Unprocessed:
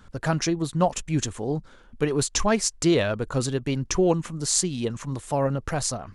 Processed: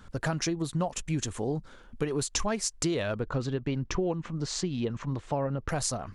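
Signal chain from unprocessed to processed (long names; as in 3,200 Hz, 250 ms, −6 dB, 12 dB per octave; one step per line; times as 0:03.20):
0:03.19–0:05.69: high-frequency loss of the air 170 metres
downward compressor, threshold −26 dBFS, peak gain reduction 10.5 dB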